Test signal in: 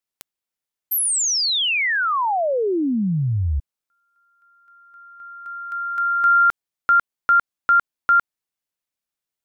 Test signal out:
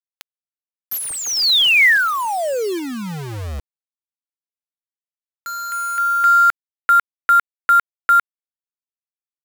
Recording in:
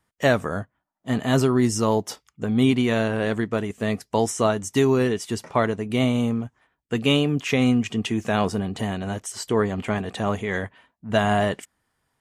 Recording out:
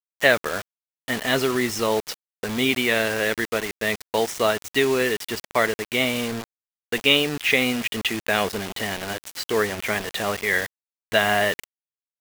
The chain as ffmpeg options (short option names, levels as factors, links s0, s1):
-af "equalizer=f=125:t=o:w=1:g=-10,equalizer=f=250:t=o:w=1:g=-4,equalizer=f=500:t=o:w=1:g=3,equalizer=f=1000:t=o:w=1:g=-3,equalizer=f=2000:t=o:w=1:g=10,equalizer=f=4000:t=o:w=1:g=7,equalizer=f=8000:t=o:w=1:g=-7,acrusher=bits=4:mix=0:aa=0.000001,volume=0.891"